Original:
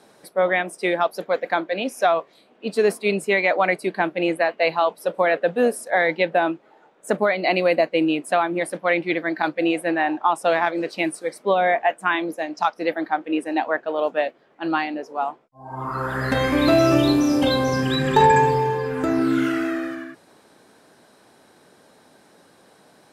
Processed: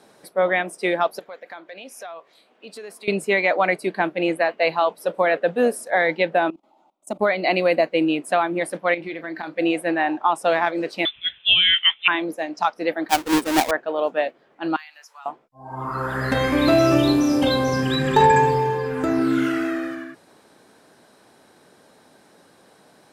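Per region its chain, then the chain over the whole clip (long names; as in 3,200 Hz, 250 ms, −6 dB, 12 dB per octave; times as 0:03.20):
0:01.19–0:03.08: low-shelf EQ 410 Hz −11 dB + downward compressor 3 to 1, threshold −38 dBFS
0:06.50–0:07.21: output level in coarse steps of 19 dB + phaser with its sweep stopped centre 450 Hz, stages 6
0:08.94–0:09.58: downward compressor, threshold −27 dBFS + double-tracking delay 31 ms −12.5 dB
0:11.05–0:12.08: parametric band 1,100 Hz +7 dB 0.73 octaves + voice inversion scrambler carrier 3,800 Hz
0:13.09–0:13.71: each half-wave held at its own peak + one half of a high-frequency compander encoder only
0:14.76–0:15.26: high-pass filter 1,200 Hz 24 dB per octave + high-shelf EQ 5,600 Hz +12 dB + downward compressor 2.5 to 1, threshold −43 dBFS
whole clip: no processing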